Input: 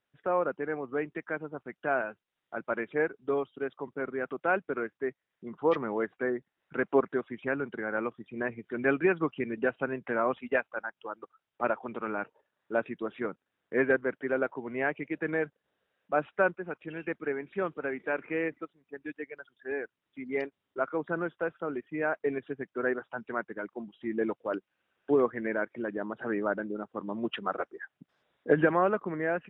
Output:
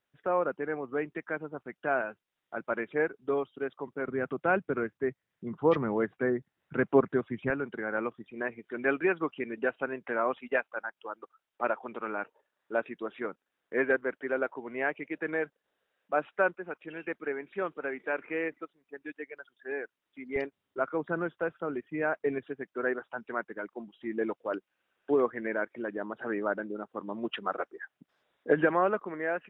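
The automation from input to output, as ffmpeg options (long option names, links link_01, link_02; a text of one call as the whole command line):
ffmpeg -i in.wav -af "asetnsamples=nb_out_samples=441:pad=0,asendcmd='4.08 equalizer g 10;7.5 equalizer g -1.5;8.3 equalizer g -10;20.36 equalizer g 1;22.43 equalizer g -6.5;28.99 equalizer g -14',equalizer=frequency=110:width_type=o:width=2:gain=-1" out.wav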